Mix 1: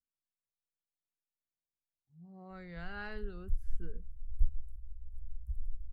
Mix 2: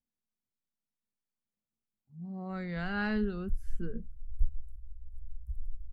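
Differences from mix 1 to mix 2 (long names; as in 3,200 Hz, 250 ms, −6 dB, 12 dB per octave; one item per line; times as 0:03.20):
speech +8.5 dB
master: add parametric band 220 Hz +13 dB 0.3 octaves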